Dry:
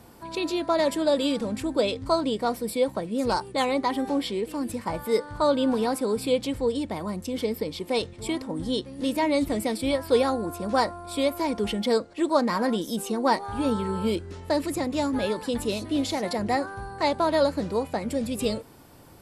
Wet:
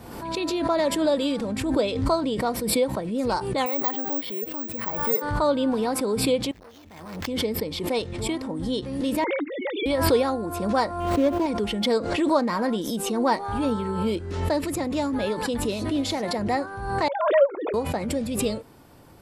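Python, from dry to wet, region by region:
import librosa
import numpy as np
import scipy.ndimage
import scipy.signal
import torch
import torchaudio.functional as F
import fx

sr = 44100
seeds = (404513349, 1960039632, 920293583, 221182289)

y = fx.chain(x, sr, fx.highpass(hz=1100.0, slope=6),
    fx.tilt_eq(slope=-3.0),
    fx.resample_bad(factor=2, down='filtered', up='zero_stuff'), at=(3.66, 5.22))
y = fx.chain(y, sr, fx.tone_stack(knobs='5-5-5'),
    fx.sample_hold(seeds[0], rate_hz=9700.0, jitter_pct=0),
    fx.transformer_sat(knee_hz=1100.0), at=(6.51, 7.27))
y = fx.chain(y, sr, fx.sine_speech(),
    fx.low_shelf(hz=490.0, db=-11.0),
    fx.band_squash(depth_pct=100), at=(9.24, 9.86))
y = fx.chain(y, sr, fx.median_filter(points=25),
    fx.dynamic_eq(hz=290.0, q=0.74, threshold_db=-39.0, ratio=4.0, max_db=6), at=(11.0, 11.46))
y = fx.chain(y, sr, fx.sine_speech(),
    fx.highpass(hz=310.0, slope=24),
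    fx.upward_expand(threshold_db=-29.0, expansion=1.5), at=(17.08, 17.74))
y = fx.peak_eq(y, sr, hz=11000.0, db=-4.5, octaves=2.1)
y = fx.pre_swell(y, sr, db_per_s=47.0)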